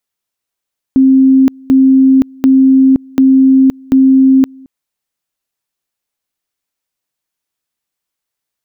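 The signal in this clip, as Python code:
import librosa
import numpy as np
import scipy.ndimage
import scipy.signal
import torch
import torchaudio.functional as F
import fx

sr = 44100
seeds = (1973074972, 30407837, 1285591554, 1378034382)

y = fx.two_level_tone(sr, hz=265.0, level_db=-3.5, drop_db=28.5, high_s=0.52, low_s=0.22, rounds=5)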